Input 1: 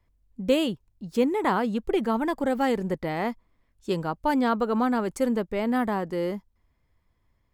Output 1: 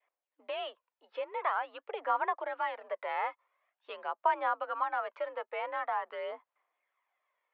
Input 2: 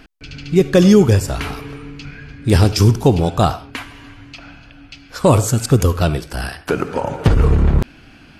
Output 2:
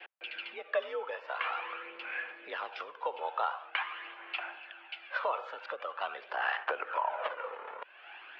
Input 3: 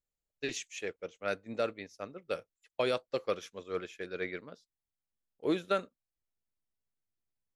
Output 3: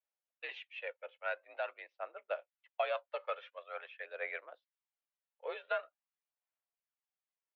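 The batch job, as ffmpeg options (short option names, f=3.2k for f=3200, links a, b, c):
-af "adynamicequalizer=threshold=0.0158:dfrequency=1100:dqfactor=1.8:tfrequency=1100:tqfactor=1.8:attack=5:release=100:ratio=0.375:range=2.5:mode=boostabove:tftype=bell,acompressor=threshold=-26dB:ratio=4,aphaser=in_gain=1:out_gain=1:delay=2.4:decay=0.44:speed=0.46:type=sinusoidal,highpass=f=550:t=q:w=0.5412,highpass=f=550:t=q:w=1.307,lowpass=f=3.1k:t=q:w=0.5176,lowpass=f=3.1k:t=q:w=0.7071,lowpass=f=3.1k:t=q:w=1.932,afreqshift=57,volume=-2dB"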